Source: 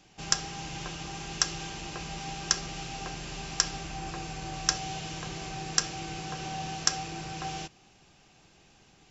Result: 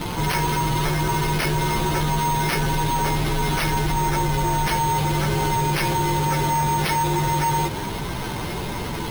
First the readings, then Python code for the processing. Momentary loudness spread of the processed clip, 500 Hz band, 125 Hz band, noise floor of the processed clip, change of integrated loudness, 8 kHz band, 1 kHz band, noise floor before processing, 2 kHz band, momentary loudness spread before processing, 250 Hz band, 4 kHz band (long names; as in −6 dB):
7 LU, +17.0 dB, +18.5 dB, −28 dBFS, +10.5 dB, can't be measured, +17.0 dB, −60 dBFS, +11.5 dB, 9 LU, +16.5 dB, +4.0 dB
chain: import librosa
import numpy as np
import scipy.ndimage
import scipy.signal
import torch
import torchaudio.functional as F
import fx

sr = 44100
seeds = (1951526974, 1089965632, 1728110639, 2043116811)

y = fx.partial_stretch(x, sr, pct=116)
y = fx.fold_sine(y, sr, drive_db=17, ceiling_db=-14.5)
y = np.repeat(scipy.signal.resample_poly(y, 1, 6), 6)[:len(y)]
y = fx.env_flatten(y, sr, amount_pct=70)
y = y * 10.0 ** (-2.5 / 20.0)